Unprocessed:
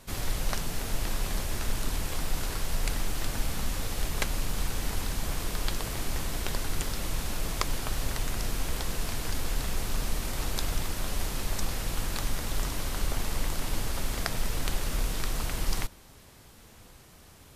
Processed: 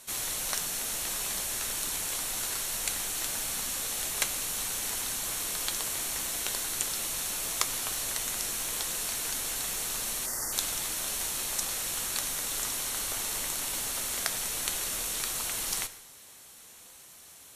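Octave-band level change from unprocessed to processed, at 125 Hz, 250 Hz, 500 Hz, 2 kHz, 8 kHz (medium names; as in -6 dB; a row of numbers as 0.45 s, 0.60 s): -15.5 dB, -9.0 dB, -5.0 dB, +0.5 dB, +8.5 dB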